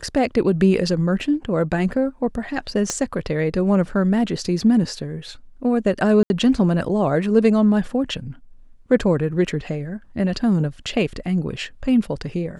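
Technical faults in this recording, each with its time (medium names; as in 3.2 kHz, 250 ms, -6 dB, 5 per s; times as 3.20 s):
2.90 s: pop -9 dBFS
6.23–6.30 s: dropout 71 ms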